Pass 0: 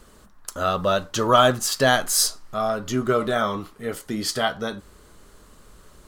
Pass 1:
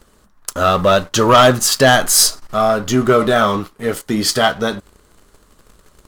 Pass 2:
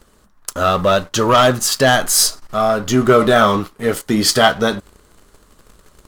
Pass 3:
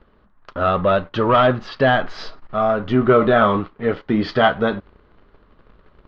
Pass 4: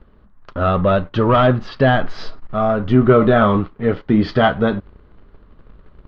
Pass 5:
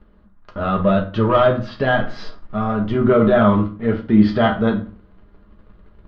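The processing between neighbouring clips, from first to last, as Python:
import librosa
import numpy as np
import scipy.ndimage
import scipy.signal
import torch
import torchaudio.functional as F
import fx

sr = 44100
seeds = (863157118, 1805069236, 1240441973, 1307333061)

y1 = fx.leveller(x, sr, passes=2)
y1 = F.gain(torch.from_numpy(y1), 2.0).numpy()
y2 = fx.rider(y1, sr, range_db=10, speed_s=2.0)
y2 = F.gain(torch.from_numpy(y2), -1.0).numpy()
y3 = scipy.signal.sosfilt(scipy.signal.bessel(8, 2200.0, 'lowpass', norm='mag', fs=sr, output='sos'), y2)
y3 = F.gain(torch.from_numpy(y3), -2.0).numpy()
y4 = fx.low_shelf(y3, sr, hz=270.0, db=9.5)
y4 = F.gain(torch.from_numpy(y4), -1.0).numpy()
y5 = fx.rev_fdn(y4, sr, rt60_s=0.39, lf_ratio=1.2, hf_ratio=0.75, size_ms=29.0, drr_db=2.5)
y5 = F.gain(torch.from_numpy(y5), -4.5).numpy()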